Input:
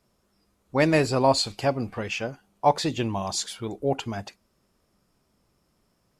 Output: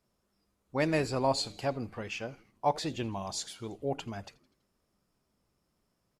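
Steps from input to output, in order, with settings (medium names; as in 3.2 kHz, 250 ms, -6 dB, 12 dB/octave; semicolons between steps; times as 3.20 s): frequency-shifting echo 82 ms, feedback 59%, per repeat -120 Hz, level -22 dB; trim -8 dB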